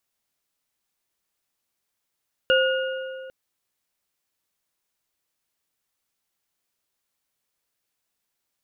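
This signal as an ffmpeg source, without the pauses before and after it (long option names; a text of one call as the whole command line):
ffmpeg -f lavfi -i "aevalsrc='0.141*pow(10,-3*t/2.37)*sin(2*PI*525*t)+0.112*pow(10,-3*t/1.748)*sin(2*PI*1447.4*t)+0.0891*pow(10,-3*t/1.429)*sin(2*PI*2837.1*t)':duration=0.8:sample_rate=44100" out.wav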